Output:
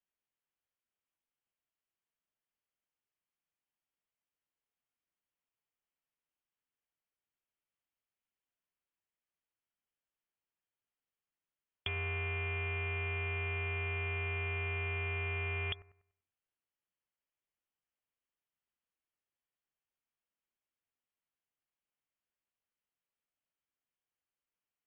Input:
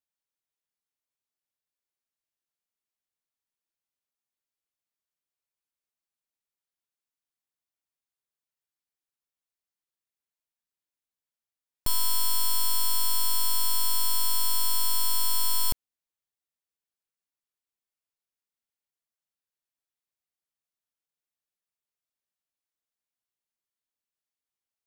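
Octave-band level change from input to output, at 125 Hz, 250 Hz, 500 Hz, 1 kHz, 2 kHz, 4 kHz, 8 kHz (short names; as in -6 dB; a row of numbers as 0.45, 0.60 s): +9.0 dB, n/a, +8.5 dB, -10.5 dB, +11.5 dB, -18.0 dB, under -40 dB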